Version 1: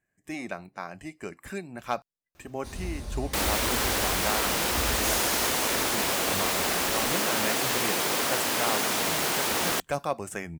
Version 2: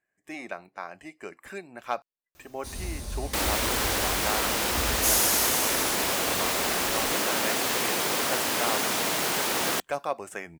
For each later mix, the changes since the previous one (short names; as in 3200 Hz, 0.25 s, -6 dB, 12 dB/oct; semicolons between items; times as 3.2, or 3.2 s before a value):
speech: add tone controls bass -13 dB, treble -5 dB; first sound: add high shelf 5000 Hz +10.5 dB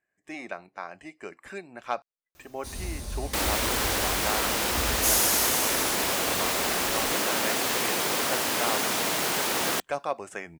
speech: add LPF 8700 Hz 12 dB/oct